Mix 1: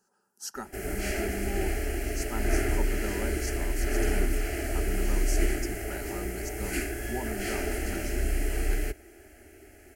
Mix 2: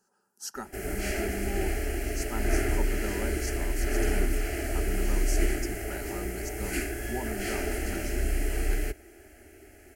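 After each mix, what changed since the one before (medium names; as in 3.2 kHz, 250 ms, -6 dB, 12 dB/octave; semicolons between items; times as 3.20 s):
no change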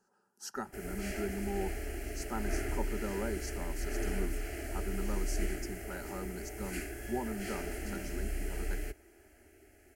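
speech: add treble shelf 4 kHz -8.5 dB; background -8.5 dB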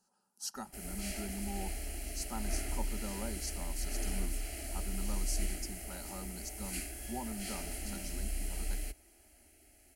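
master: add fifteen-band graphic EQ 100 Hz -8 dB, 400 Hz -12 dB, 1.6 kHz -10 dB, 4 kHz +7 dB, 10 kHz +8 dB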